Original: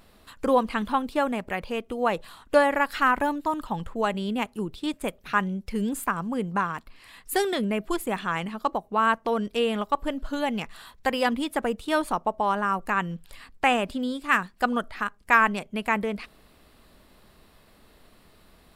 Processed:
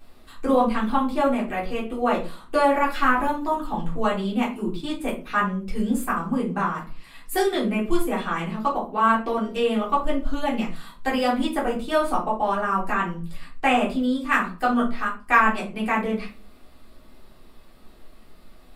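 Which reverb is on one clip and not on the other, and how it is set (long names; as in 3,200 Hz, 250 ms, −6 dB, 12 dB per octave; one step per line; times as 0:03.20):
rectangular room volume 200 cubic metres, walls furnished, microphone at 3.6 metres
level −6 dB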